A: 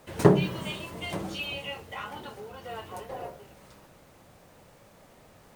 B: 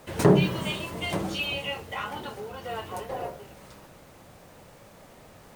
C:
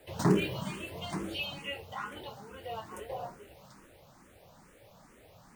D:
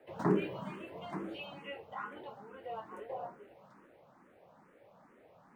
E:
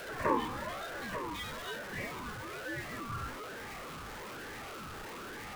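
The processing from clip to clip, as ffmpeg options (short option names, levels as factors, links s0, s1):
-af "alimiter=level_in=3.55:limit=0.891:release=50:level=0:latency=1,volume=0.473"
-filter_complex "[0:a]acrossover=split=250|1500[s0][s1][s2];[s0]acrusher=bits=3:mode=log:mix=0:aa=0.000001[s3];[s3][s1][s2]amix=inputs=3:normalize=0,asplit=2[s4][s5];[s5]afreqshift=2.3[s6];[s4][s6]amix=inputs=2:normalize=1,volume=0.631"
-filter_complex "[0:a]acrossover=split=160 2200:gain=0.112 1 0.112[s0][s1][s2];[s0][s1][s2]amix=inputs=3:normalize=0,volume=0.794"
-af "aeval=exprs='val(0)+0.5*0.0141*sgn(val(0))':c=same,aeval=exprs='val(0)*sin(2*PI*830*n/s+830*0.25/1.1*sin(2*PI*1.1*n/s))':c=same,volume=1.12"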